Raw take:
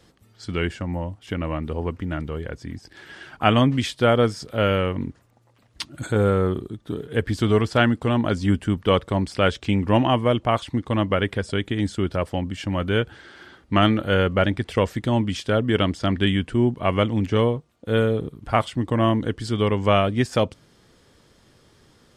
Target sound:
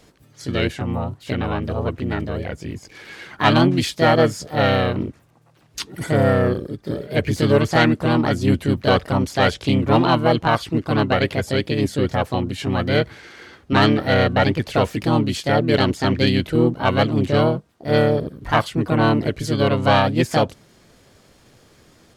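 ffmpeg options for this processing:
-filter_complex "[0:a]asplit=2[s0][s1];[s1]asetrate=58866,aresample=44100,atempo=0.749154,volume=0.891[s2];[s0][s2]amix=inputs=2:normalize=0,acontrast=30,volume=0.631"

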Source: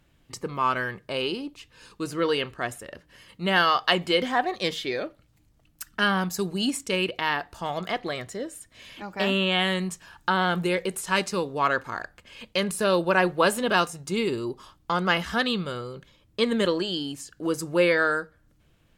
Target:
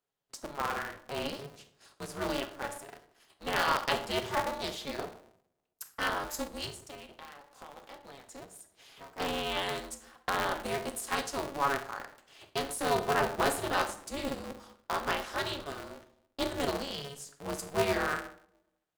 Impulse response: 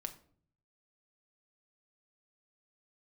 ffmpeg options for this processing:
-filter_complex "[0:a]highpass=450,agate=range=0.224:threshold=0.00282:ratio=16:detection=peak,equalizer=f=2300:w=1.1:g=-9,asettb=1/sr,asplit=3[s0][s1][s2];[s0]atrim=end=6.664[s3];[s1]atrim=start=6.66:end=9.18,asetpts=PTS-STARTPTS,afade=t=in:d=0.004:c=qsin,afade=t=out:st=2.516:d=0.004:c=qsin,acompressor=threshold=0.00891:ratio=10[s4];[s2]atrim=start=9.176[s5];[s3][s4]acrossfade=d=0.004:c1=hsin:c2=qsin[s6];[s6][s5]acrossfade=d=0.004:c1=qsin:c2=hsin[s7];[1:a]atrim=start_sample=2205,asetrate=33075,aresample=44100[s8];[s7][s8]afir=irnorm=-1:irlink=0,aeval=exprs='val(0)*sgn(sin(2*PI*140*n/s))':c=same,volume=0.708"

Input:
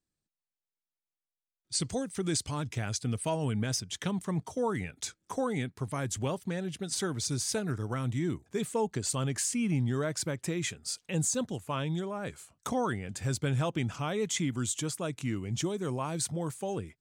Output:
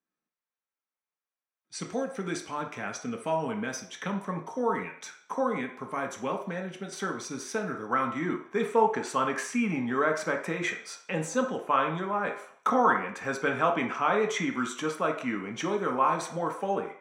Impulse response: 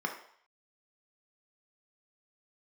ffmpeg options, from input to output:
-filter_complex "[0:a]asetnsamples=n=441:p=0,asendcmd='7.89 equalizer g 13.5',equalizer=f=1200:w=0.36:g=7[s0];[1:a]atrim=start_sample=2205,asetrate=48510,aresample=44100[s1];[s0][s1]afir=irnorm=-1:irlink=0,volume=0.447"

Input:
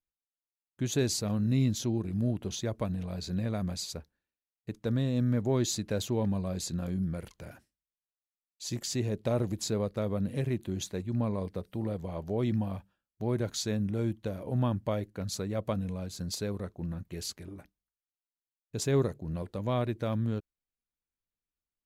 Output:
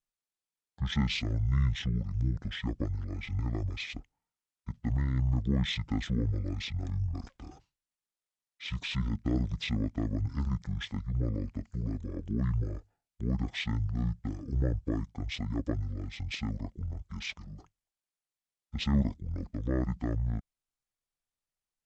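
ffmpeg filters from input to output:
-af "aeval=exprs='0.15*(cos(1*acos(clip(val(0)/0.15,-1,1)))-cos(1*PI/2))+0.00188*(cos(4*acos(clip(val(0)/0.15,-1,1)))-cos(4*PI/2))':c=same,asetrate=22696,aresample=44100,atempo=1.94306"

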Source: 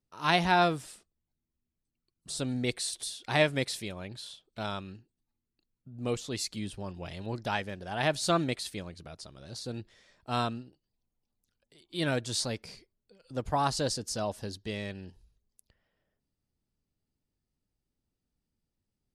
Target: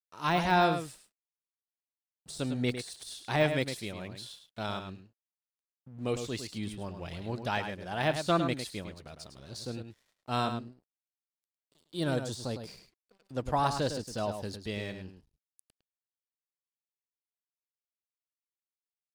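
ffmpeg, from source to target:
-filter_complex "[0:a]deesser=0.85,asettb=1/sr,asplit=3[s0][s1][s2];[s0]atrim=end=10.504[s3];[s1]atrim=start=10.5:end=12.67,asetpts=PTS-STARTPTS,afade=t=in:d=0.004:c=qsin,afade=t=out:st=2.166:d=0.004:c=qsin,equalizer=f=2200:w=1.6:g=-11.5[s4];[s2]atrim=start=12.666[s5];[s3][s4]acrossfade=d=0.004:c1=hsin:c2=qsin[s6];[s6][s5]acrossfade=d=0.004:c1=qsin:c2=hsin,aeval=exprs='sgn(val(0))*max(abs(val(0))-0.00112,0)':c=same,asplit=2[s7][s8];[s8]adelay=105,volume=0.398,highshelf=f=4000:g=-2.36[s9];[s7][s9]amix=inputs=2:normalize=0"

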